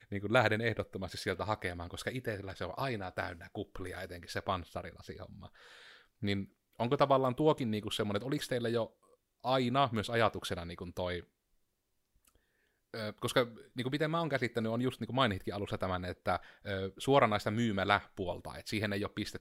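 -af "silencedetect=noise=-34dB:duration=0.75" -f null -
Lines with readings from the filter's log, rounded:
silence_start: 5.22
silence_end: 6.23 | silence_duration: 1.01
silence_start: 11.19
silence_end: 12.94 | silence_duration: 1.75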